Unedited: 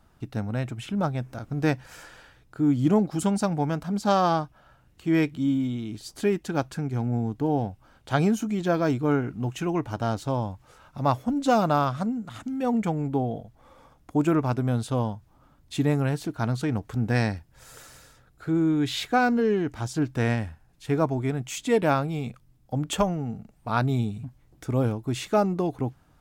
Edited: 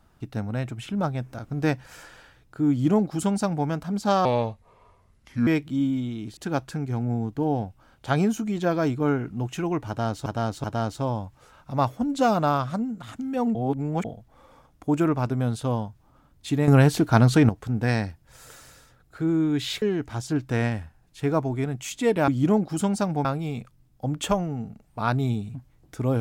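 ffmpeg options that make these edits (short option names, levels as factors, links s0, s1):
-filter_complex "[0:a]asplit=13[s0][s1][s2][s3][s4][s5][s6][s7][s8][s9][s10][s11][s12];[s0]atrim=end=4.254[s13];[s1]atrim=start=4.25:end=5.14,asetpts=PTS-STARTPTS,asetrate=32193,aresample=44100[s14];[s2]atrim=start=5.136:end=6.042[s15];[s3]atrim=start=6.398:end=10.292[s16];[s4]atrim=start=9.908:end=10.292[s17];[s5]atrim=start=9.908:end=12.822[s18];[s6]atrim=start=12.818:end=13.322,asetpts=PTS-STARTPTS,areverse[s19];[s7]atrim=start=13.318:end=15.952[s20];[s8]atrim=start=15.948:end=16.762,asetpts=PTS-STARTPTS,volume=2.99[s21];[s9]atrim=start=16.758:end=19.092[s22];[s10]atrim=start=19.478:end=21.942[s23];[s11]atrim=start=2.698:end=3.672[s24];[s12]atrim=start=21.938[s25];[s13][s14]acrossfade=d=0.004:c1=hsin:c2=hsin[s26];[s26][s15]acrossfade=d=0.004:c1=hsin:c2=hsin[s27];[s27][s16]acrossfade=d=0.004:c1=hsin:c2=hsin[s28];[s28][s17]acrossfade=d=0.004:c1=hsin:c2=hsin[s29];[s29][s18]acrossfade=d=0.004:c1=hsin:c2=hsin[s30];[s30][s19]acrossfade=d=0.004:c1=hsin:c2=hsin[s31];[s31][s20]acrossfade=d=0.004:c1=hsin:c2=hsin[s32];[s32][s21]acrossfade=d=0.004:c1=hsin:c2=hsin[s33];[s33][s22]acrossfade=d=0.004:c1=hsin:c2=hsin[s34];[s34][s23]acrossfade=d=0.004:c1=hsin:c2=hsin[s35];[s35][s24]acrossfade=d=0.004:c1=hsin:c2=hsin[s36];[s36][s25]acrossfade=d=0.004:c1=hsin:c2=hsin"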